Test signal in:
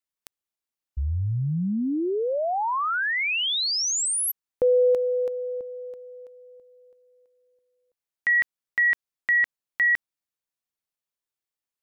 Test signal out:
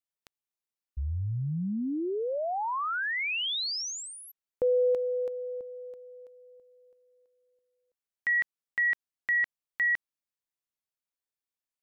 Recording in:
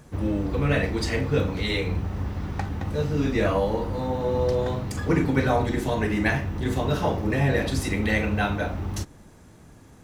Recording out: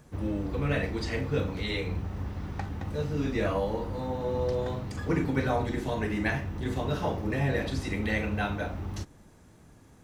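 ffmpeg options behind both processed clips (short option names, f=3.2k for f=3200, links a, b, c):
-filter_complex "[0:a]acrossover=split=6100[a][b];[b]acompressor=threshold=-49dB:ratio=4:attack=1:release=60[c];[a][c]amix=inputs=2:normalize=0,volume=-5.5dB"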